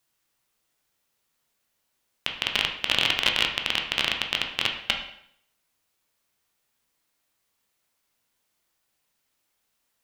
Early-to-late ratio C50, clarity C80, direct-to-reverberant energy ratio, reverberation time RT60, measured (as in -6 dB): 6.5 dB, 10.0 dB, 2.0 dB, 0.70 s